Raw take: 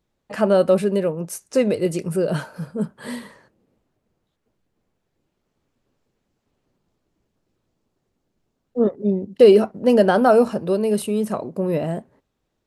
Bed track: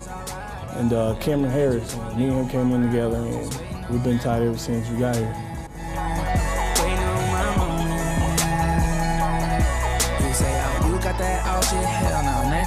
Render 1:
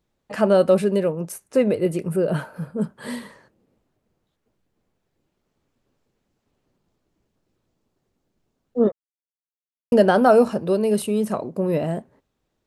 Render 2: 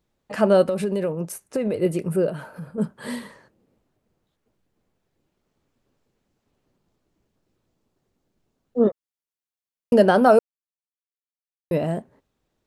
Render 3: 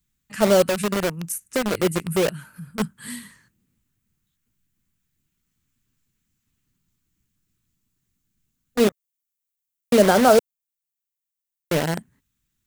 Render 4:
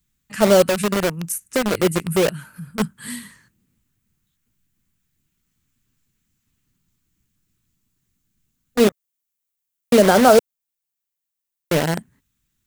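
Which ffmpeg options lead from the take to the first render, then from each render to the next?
-filter_complex "[0:a]asettb=1/sr,asplit=3[a][b][c];[a]atrim=end=1.324[d];[b]atrim=start=1.32:end=2.82,asetpts=PTS-STARTPTS,afade=t=in:d=0.004:c=qsin,afade=t=out:st=1.496:d=0.004:c=qsin,equalizer=f=5.7k:w=1:g=-11[e];[c]atrim=start=2.816[f];[d][e]acrossfade=d=0.004:c1=hsin:c2=qsin[g];[g][f]acrossfade=d=0.004:c1=qsin:c2=hsin,asplit=3[h][i][j];[h]atrim=end=8.92,asetpts=PTS-STARTPTS,afade=t=out:st=8.916:d=0.004:c=hsin[k];[i]atrim=start=8.92:end=9.92,asetpts=PTS-STARTPTS,volume=0[l];[j]atrim=start=9.92,asetpts=PTS-STARTPTS,afade=t=in:d=0.004:c=hsin[m];[k][l][m]concat=n=3:v=0:a=1"
-filter_complex "[0:a]asplit=3[a][b][c];[a]afade=t=out:st=0.63:d=0.02[d];[b]acompressor=threshold=-19dB:ratio=12:attack=3.2:release=140:knee=1:detection=peak,afade=t=in:st=0.63:d=0.02,afade=t=out:st=1.74:d=0.02[e];[c]afade=t=in:st=1.74:d=0.02[f];[d][e][f]amix=inputs=3:normalize=0,asettb=1/sr,asplit=3[g][h][i];[g]atrim=end=2.294[j];[h]atrim=start=2.29:end=2.78,asetpts=PTS-STARTPTS,afade=t=in:d=0.004:c=qsin,afade=t=out:st=0.486:d=0.004:c=qsin,acompressor=threshold=-32dB:ratio=3:attack=3.2:release=140:knee=1:detection=peak[k];[i]atrim=start=2.776[l];[j][k]acrossfade=d=0.004:c1=hsin:c2=qsin[m];[m][l]acrossfade=d=0.004:c1=qsin:c2=hsin,asplit=3[n][o][p];[n]atrim=end=10.39,asetpts=PTS-STARTPTS,afade=t=out:st=10.386:d=0.004:c=hsin[q];[o]atrim=start=10.39:end=11.71,asetpts=PTS-STARTPTS,volume=0[r];[p]atrim=start=11.71,asetpts=PTS-STARTPTS,afade=t=in:d=0.004:c=hsin[s];[q][r][s]concat=n=3:v=0:a=1"
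-filter_complex "[0:a]acrossover=split=250|1300|3400[a][b][c][d];[b]acrusher=bits=3:mix=0:aa=0.000001[e];[d]aexciter=amount=2.4:drive=5.8:freq=6.5k[f];[a][e][c][f]amix=inputs=4:normalize=0"
-af "volume=3dB,alimiter=limit=-2dB:level=0:latency=1"

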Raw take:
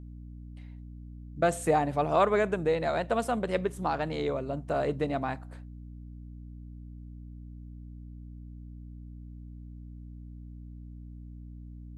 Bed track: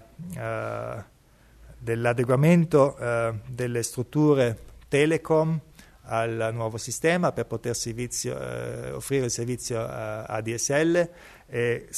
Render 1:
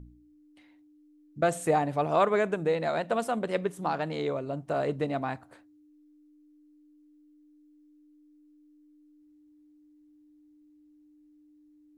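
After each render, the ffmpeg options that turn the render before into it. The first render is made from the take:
-af "bandreject=f=60:t=h:w=4,bandreject=f=120:t=h:w=4,bandreject=f=180:t=h:w=4,bandreject=f=240:t=h:w=4"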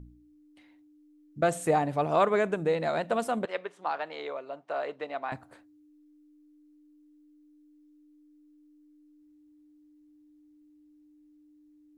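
-filter_complex "[0:a]asettb=1/sr,asplit=3[a][b][c];[a]atrim=end=3.454[d];[b]atrim=start=3.45:end=5.32,asetpts=PTS-STARTPTS,afade=t=in:d=0.004:c=qsin,afade=t=out:st=1.866:d=0.004:c=qsin,highpass=630,lowpass=3.9k[e];[c]atrim=start=5.316[f];[d][e]acrossfade=d=0.004:c1=hsin:c2=qsin[g];[g][f]acrossfade=d=0.004:c1=qsin:c2=hsin"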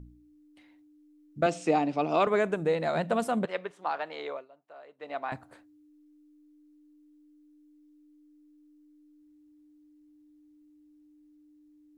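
-filter_complex "[0:a]asettb=1/sr,asplit=3[a][b][c];[a]atrim=end=1.464[d];[b]atrim=start=1.46:end=2.27,asetpts=PTS-STARTPTS,afade=t=in:d=0.004:c=qsin,afade=t=out:st=0.806:d=0.004:c=qsin,highpass=f=170:w=0.5412,highpass=f=170:w=1.3066,equalizer=f=300:t=q:w=4:g=5,equalizer=f=550:t=q:w=4:g=-3,equalizer=f=1k:t=q:w=4:g=-3,equalizer=f=1.7k:t=q:w=4:g=-7,equalizer=f=2.6k:t=q:w=4:g=7,equalizer=f=5.2k:t=q:w=4:g=9,lowpass=f=6.7k:w=0.5412,lowpass=f=6.7k:w=1.3066[e];[c]atrim=start=2.266[f];[d][e]acrossfade=d=0.004:c1=hsin:c2=qsin[g];[g][f]acrossfade=d=0.004:c1=qsin:c2=hsin,asettb=1/sr,asplit=3[h][i][j];[h]atrim=end=2.954[k];[i]atrim=start=2.95:end=3.71,asetpts=PTS-STARTPTS,afade=t=in:d=0.004:c=qsin,afade=t=out:st=0.756:d=0.004:c=qsin,equalizer=f=170:t=o:w=0.66:g=8[l];[j]atrim=start=3.706[m];[k][l]acrossfade=d=0.004:c1=hsin:c2=qsin[n];[n][m]acrossfade=d=0.004:c1=qsin:c2=hsin,asplit=3[o][p][q];[o]atrim=end=4.48,asetpts=PTS-STARTPTS,afade=t=out:st=4.34:d=0.14:silence=0.141254[r];[p]atrim=start=4.48:end=4.98,asetpts=PTS-STARTPTS,volume=-17dB[s];[q]atrim=start=4.98,asetpts=PTS-STARTPTS,afade=t=in:d=0.14:silence=0.141254[t];[r][s][t]concat=n=3:v=0:a=1"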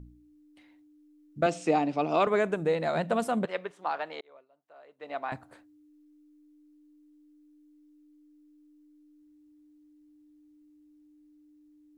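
-filter_complex "[0:a]asplit=2[a][b];[a]atrim=end=4.21,asetpts=PTS-STARTPTS,afade=t=out:st=4.206:d=0.004:c=hsin[c];[b]atrim=start=4.21,asetpts=PTS-STARTPTS,afade=t=in:d=0.92[d];[c][d]concat=n=2:v=0:a=1"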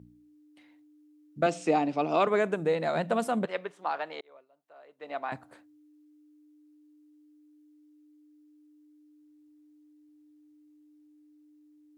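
-af "highpass=120"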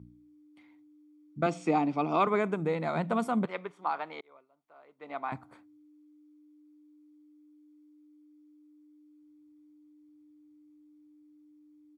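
-af "highshelf=f=3.1k:g=-8.5,aecho=1:1:0.9:0.47"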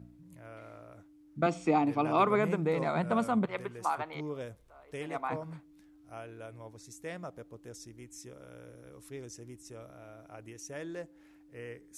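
-filter_complex "[1:a]volume=-19dB[a];[0:a][a]amix=inputs=2:normalize=0"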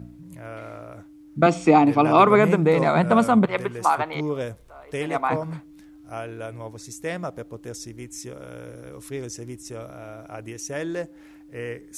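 -af "volume=11.5dB,alimiter=limit=-3dB:level=0:latency=1"

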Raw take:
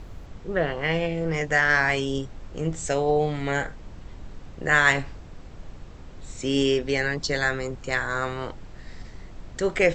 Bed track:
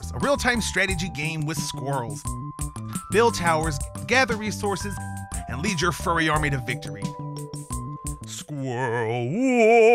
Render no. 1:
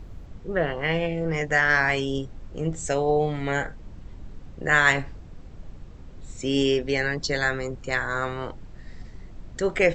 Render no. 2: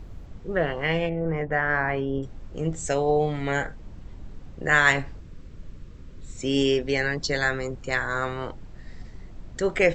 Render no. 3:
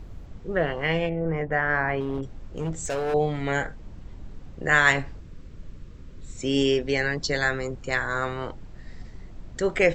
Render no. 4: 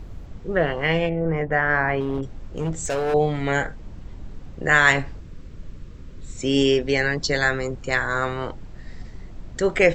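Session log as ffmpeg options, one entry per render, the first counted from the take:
-af "afftdn=nr=6:nf=-43"
-filter_complex "[0:a]asettb=1/sr,asplit=3[a][b][c];[a]atrim=end=1.094[d];[b]atrim=start=1.09:end=2.23,asetpts=PTS-STARTPTS,afade=t=in:d=0.004:c=qsin,afade=t=out:st=1.136:d=0.004:c=qsin,lowpass=1.4k[e];[c]atrim=start=2.226[f];[d][e]acrossfade=d=0.004:c1=hsin:c2=qsin[g];[g][f]acrossfade=d=0.004:c1=qsin:c2=hsin,asettb=1/sr,asplit=3[h][i][j];[h]atrim=end=5.204[k];[i]atrim=start=5.2:end=6.37,asetpts=PTS-STARTPTS,afade=t=in:d=0.004:c=qsin,afade=t=out:st=1.166:d=0.004:c=qsin,equalizer=f=770:w=3:g=-12[l];[j]atrim=start=6.366[m];[k][l]acrossfade=d=0.004:c1=hsin:c2=qsin[n];[n][m]acrossfade=d=0.004:c1=qsin:c2=hsin"
-filter_complex "[0:a]asettb=1/sr,asplit=3[a][b][c];[a]atrim=end=2.004[d];[b]atrim=start=2:end=3.14,asetpts=PTS-STARTPTS,afade=t=in:d=0.004:c=qsin,afade=t=out:st=1.136:d=0.004:c=qsin,asoftclip=type=hard:threshold=-23.5dB[e];[c]atrim=start=3.136[f];[d][e]acrossfade=d=0.004:c1=hsin:c2=qsin[g];[g][f]acrossfade=d=0.004:c1=qsin:c2=hsin"
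-af "volume=3.5dB,alimiter=limit=-3dB:level=0:latency=1"

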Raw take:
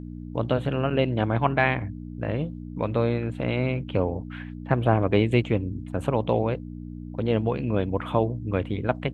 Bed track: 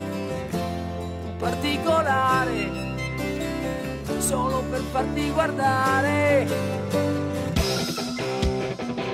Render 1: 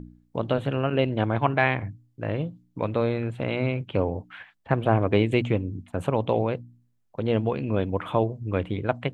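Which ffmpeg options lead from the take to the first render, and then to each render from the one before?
-af "bandreject=f=60:t=h:w=4,bandreject=f=120:t=h:w=4,bandreject=f=180:t=h:w=4,bandreject=f=240:t=h:w=4,bandreject=f=300:t=h:w=4"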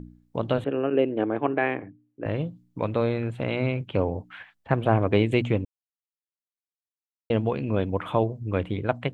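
-filter_complex "[0:a]asettb=1/sr,asplit=3[a][b][c];[a]atrim=end=0.644[d];[b]atrim=start=0.64:end=2.26,asetpts=PTS-STARTPTS,afade=t=in:d=0.004:c=qsin,afade=t=out:st=1.616:d=0.004:c=qsin,highpass=260,equalizer=f=300:t=q:w=4:g=7,equalizer=f=430:t=q:w=4:g=6,equalizer=f=670:t=q:w=4:g=-3,equalizer=f=970:t=q:w=4:g=-7,equalizer=f=1.4k:t=q:w=4:g=-5,equalizer=f=2.1k:t=q:w=4:g=-6,lowpass=f=2.5k:w=0.5412,lowpass=f=2.5k:w=1.3066[e];[c]atrim=start=2.256[f];[d][e]acrossfade=d=0.004:c1=hsin:c2=qsin[g];[g][f]acrossfade=d=0.004:c1=qsin:c2=hsin,asplit=3[h][i][j];[h]atrim=end=5.65,asetpts=PTS-STARTPTS,afade=t=out:st=5.646:d=0.004:c=hsin[k];[i]atrim=start=5.65:end=7.3,asetpts=PTS-STARTPTS,volume=0[l];[j]atrim=start=7.3,asetpts=PTS-STARTPTS,afade=t=in:d=0.004:c=hsin[m];[k][l][m]concat=n=3:v=0:a=1"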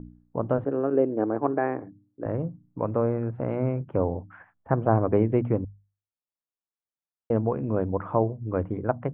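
-af "lowpass=f=1.4k:w=0.5412,lowpass=f=1.4k:w=1.3066,bandreject=f=50:t=h:w=6,bandreject=f=100:t=h:w=6,bandreject=f=150:t=h:w=6,bandreject=f=200:t=h:w=6"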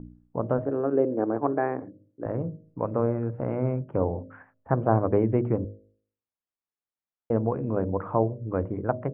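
-af "lowpass=2.2k,bandreject=f=52.53:t=h:w=4,bandreject=f=105.06:t=h:w=4,bandreject=f=157.59:t=h:w=4,bandreject=f=210.12:t=h:w=4,bandreject=f=262.65:t=h:w=4,bandreject=f=315.18:t=h:w=4,bandreject=f=367.71:t=h:w=4,bandreject=f=420.24:t=h:w=4,bandreject=f=472.77:t=h:w=4,bandreject=f=525.3:t=h:w=4,bandreject=f=577.83:t=h:w=4,bandreject=f=630.36:t=h:w=4"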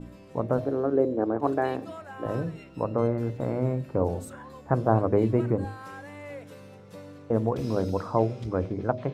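-filter_complex "[1:a]volume=-21dB[a];[0:a][a]amix=inputs=2:normalize=0"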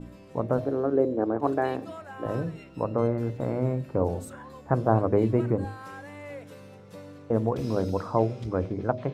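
-af anull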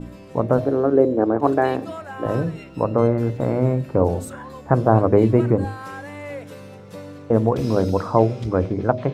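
-af "volume=7.5dB,alimiter=limit=-1dB:level=0:latency=1"

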